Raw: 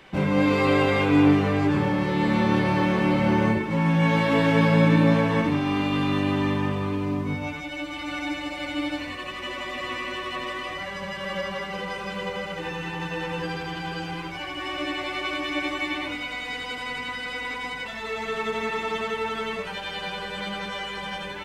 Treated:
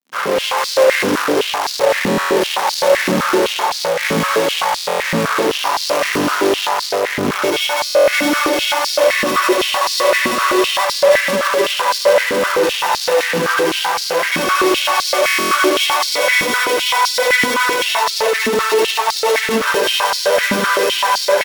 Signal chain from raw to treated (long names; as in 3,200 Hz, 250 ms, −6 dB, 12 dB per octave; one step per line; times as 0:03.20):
samples sorted by size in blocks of 8 samples
high-shelf EQ 2,300 Hz −10 dB
comb filter 1.9 ms, depth 75%
automatic gain control gain up to 10 dB
fuzz pedal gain 35 dB, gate −43 dBFS
single-tap delay 478 ms −11 dB
buffer that repeats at 0:02.09/0:04.75/0:07.85/0:15.26, samples 1,024, times 11
high-pass on a step sequencer 7.8 Hz 240–4,500 Hz
level −4 dB